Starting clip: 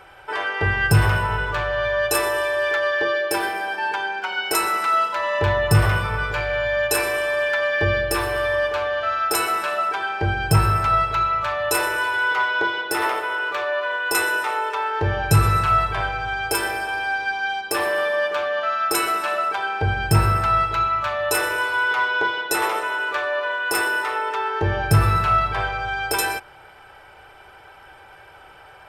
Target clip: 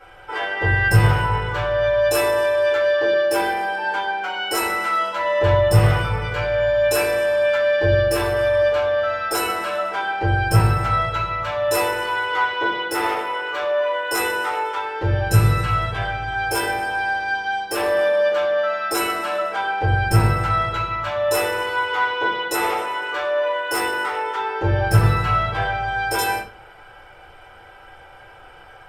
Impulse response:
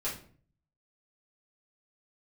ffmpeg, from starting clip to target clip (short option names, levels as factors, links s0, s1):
-filter_complex "[0:a]asettb=1/sr,asplit=3[s0][s1][s2];[s0]atrim=end=14.774[s3];[s1]atrim=start=14.77:end=16.32,asetpts=PTS-STARTPTS,afade=t=in:d=0.004:c=qsin,afade=t=out:st=1.546:d=0.004:c=qsin,equalizer=f=910:w=0.95:g=-4[s4];[s2]atrim=start=16.316[s5];[s3][s4]acrossfade=d=0.004:c1=hsin:c2=qsin[s6];[s6][s5]acrossfade=d=0.004:c1=qsin:c2=hsin[s7];[1:a]atrim=start_sample=2205,asetrate=52920,aresample=44100[s8];[s7][s8]afir=irnorm=-1:irlink=0,volume=0.841"